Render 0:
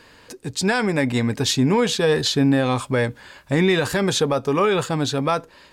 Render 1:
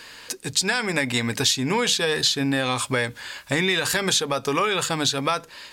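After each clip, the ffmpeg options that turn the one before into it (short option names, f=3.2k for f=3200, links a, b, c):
-af "tiltshelf=f=1.2k:g=-7,bandreject=f=50:t=h:w=6,bandreject=f=100:t=h:w=6,bandreject=f=150:t=h:w=6,bandreject=f=200:t=h:w=6,acompressor=threshold=-24dB:ratio=4,volume=4.5dB"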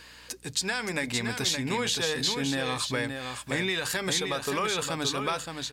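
-af "aeval=exprs='val(0)+0.00251*(sin(2*PI*60*n/s)+sin(2*PI*2*60*n/s)/2+sin(2*PI*3*60*n/s)/3+sin(2*PI*4*60*n/s)/4+sin(2*PI*5*60*n/s)/5)':c=same,aecho=1:1:570:0.501,volume=-7dB"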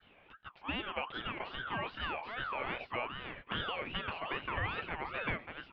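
-af "highpass=f=220:t=q:w=0.5412,highpass=f=220:t=q:w=1.307,lowpass=f=2.2k:t=q:w=0.5176,lowpass=f=2.2k:t=q:w=0.7071,lowpass=f=2.2k:t=q:w=1.932,afreqshift=-230,adynamicequalizer=threshold=0.00562:dfrequency=1300:dqfactor=0.74:tfrequency=1300:tqfactor=0.74:attack=5:release=100:ratio=0.375:range=2:mode=boostabove:tftype=bell,aeval=exprs='val(0)*sin(2*PI*1200*n/s+1200*0.3/2.5*sin(2*PI*2.5*n/s))':c=same,volume=-5.5dB"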